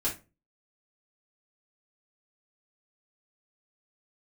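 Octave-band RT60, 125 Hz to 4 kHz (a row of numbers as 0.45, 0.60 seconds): 0.45, 0.40, 0.30, 0.25, 0.25, 0.20 seconds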